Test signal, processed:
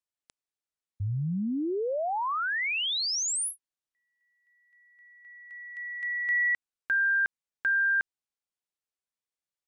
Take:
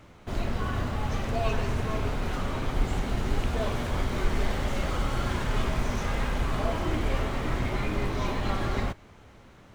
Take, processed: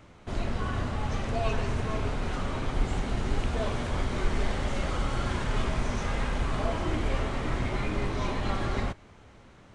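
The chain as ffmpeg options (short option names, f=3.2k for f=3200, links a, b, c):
-af "aresample=22050,aresample=44100,volume=-1dB"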